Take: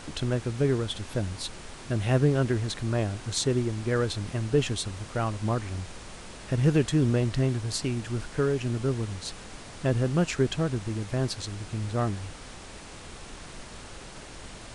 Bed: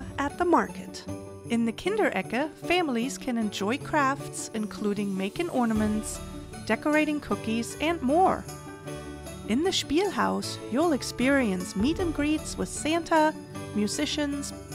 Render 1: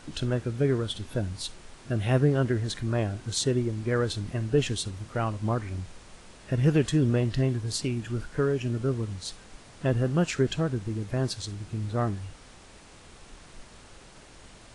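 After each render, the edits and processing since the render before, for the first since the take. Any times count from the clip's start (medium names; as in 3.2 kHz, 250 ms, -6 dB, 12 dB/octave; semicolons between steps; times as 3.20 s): noise print and reduce 7 dB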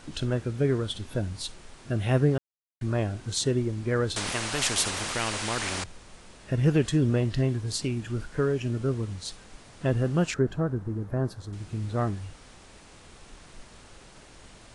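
2.38–2.81 s: mute; 4.16–5.84 s: spectrum-flattening compressor 4:1; 10.34–11.53 s: high-order bell 4.5 kHz -15 dB 2.5 oct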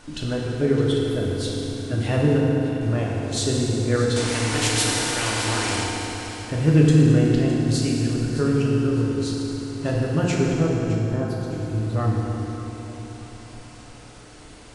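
echo whose repeats swap between lows and highs 306 ms, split 920 Hz, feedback 60%, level -9 dB; FDN reverb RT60 3.7 s, high-frequency decay 0.7×, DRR -3.5 dB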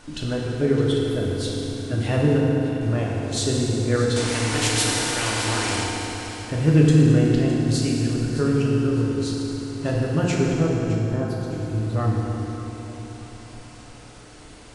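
no audible change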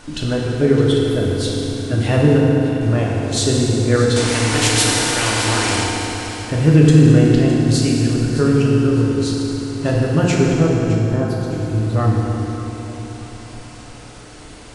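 trim +6 dB; peak limiter -1 dBFS, peak gain reduction 2.5 dB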